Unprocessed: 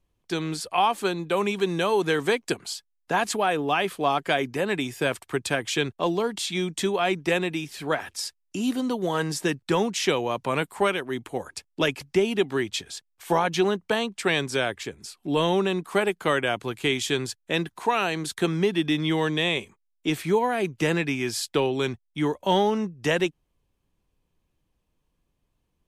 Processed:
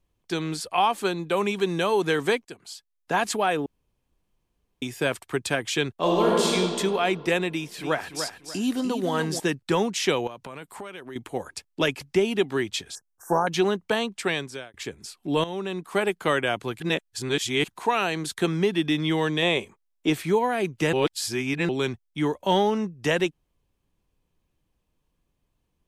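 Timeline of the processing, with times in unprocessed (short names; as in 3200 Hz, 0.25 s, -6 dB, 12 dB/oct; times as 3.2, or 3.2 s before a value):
2.45–3.15 fade in, from -19.5 dB
3.66–4.82 room tone
5.99–6.48 reverb throw, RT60 2.4 s, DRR -4.5 dB
7.49–9.4 feedback echo 0.294 s, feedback 28%, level -8 dB
10.27–11.16 compressor 5:1, threshold -36 dBFS
12.95–13.47 Chebyshev band-stop 1600–5700 Hz, order 4
14.15–14.74 fade out
15.44–16.1 fade in, from -13.5 dB
16.8–17.68 reverse
19.42–20.13 bell 610 Hz +5.5 dB 2 oct
20.93–21.69 reverse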